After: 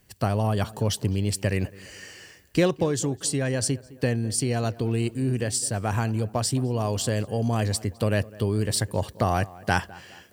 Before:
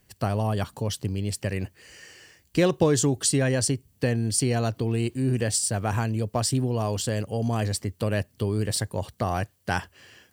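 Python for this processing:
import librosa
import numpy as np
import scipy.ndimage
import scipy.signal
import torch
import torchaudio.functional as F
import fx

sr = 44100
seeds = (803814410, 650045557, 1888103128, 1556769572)

y = fx.rider(x, sr, range_db=10, speed_s=0.5)
y = fx.echo_tape(y, sr, ms=208, feedback_pct=49, wet_db=-18, lp_hz=1800.0, drive_db=11.0, wow_cents=26)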